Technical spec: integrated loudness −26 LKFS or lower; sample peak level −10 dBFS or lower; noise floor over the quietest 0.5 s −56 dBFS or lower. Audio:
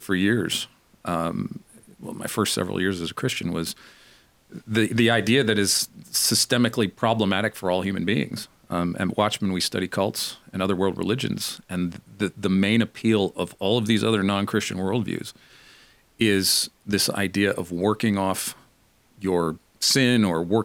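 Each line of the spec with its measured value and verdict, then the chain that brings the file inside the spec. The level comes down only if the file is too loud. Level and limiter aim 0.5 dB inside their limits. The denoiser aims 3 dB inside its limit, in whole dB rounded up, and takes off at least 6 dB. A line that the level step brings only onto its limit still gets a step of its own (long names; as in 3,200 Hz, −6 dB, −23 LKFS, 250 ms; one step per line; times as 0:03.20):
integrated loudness −23.5 LKFS: out of spec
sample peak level −4.0 dBFS: out of spec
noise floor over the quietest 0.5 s −60 dBFS: in spec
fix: level −3 dB
brickwall limiter −10.5 dBFS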